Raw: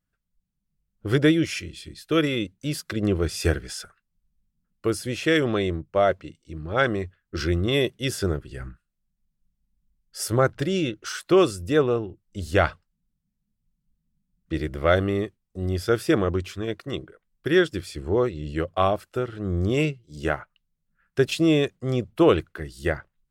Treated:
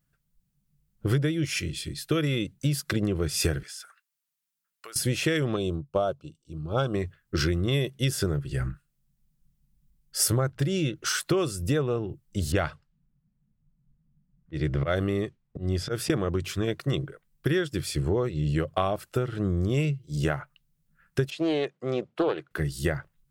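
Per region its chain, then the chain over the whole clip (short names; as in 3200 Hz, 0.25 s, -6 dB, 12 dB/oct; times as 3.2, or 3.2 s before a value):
3.63–4.96 HPF 1100 Hz + compressor 4:1, threshold -46 dBFS
5.56–6.94 Butterworth band-stop 1900 Hz, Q 1.5 + upward expander, over -40 dBFS
12.52–16.1 low-pass opened by the level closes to 1600 Hz, open at -18.5 dBFS + auto swell 0.194 s
21.3–22.51 HPF 380 Hz + tape spacing loss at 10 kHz 20 dB + Doppler distortion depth 0.18 ms
whole clip: bell 140 Hz +11.5 dB 0.32 oct; compressor 10:1, threshold -26 dBFS; high shelf 7700 Hz +7 dB; gain +4 dB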